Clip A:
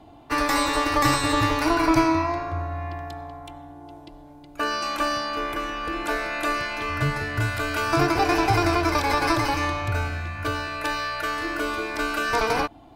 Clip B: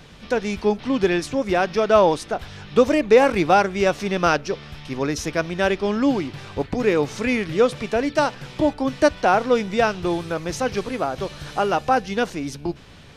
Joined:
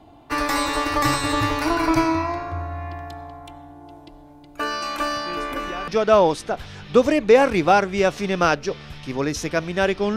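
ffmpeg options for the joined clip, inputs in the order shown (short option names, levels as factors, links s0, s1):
-filter_complex "[1:a]asplit=2[s0][s1];[0:a]apad=whole_dur=10.16,atrim=end=10.16,atrim=end=5.882[s2];[s1]atrim=start=1.698:end=5.98[s3];[s0]atrim=start=1.08:end=1.7,asetpts=PTS-STARTPTS,volume=0.188,afade=t=in:d=0.004:c=hsin,afade=t=out:st=0.616:d=0.004:c=hsin,adelay=5260[s4];[s2][s3]acrossfade=d=0.004:c1=hsin:c2=hsin[s5];[s5][s4]amix=inputs=2:normalize=0"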